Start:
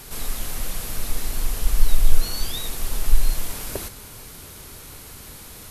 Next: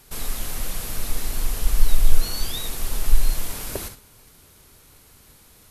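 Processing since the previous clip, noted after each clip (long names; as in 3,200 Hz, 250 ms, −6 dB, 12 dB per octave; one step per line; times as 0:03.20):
noise gate −37 dBFS, range −11 dB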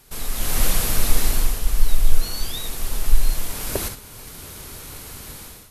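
automatic gain control gain up to 15.5 dB
level −1 dB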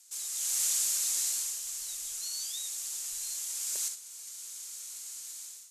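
resonant band-pass 7,100 Hz, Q 3.3
level +5 dB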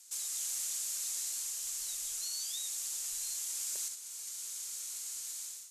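downward compressor 6 to 1, threshold −36 dBFS, peak gain reduction 10 dB
level +1.5 dB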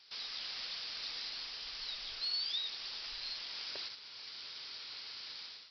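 downsampling to 11,025 Hz
level +7.5 dB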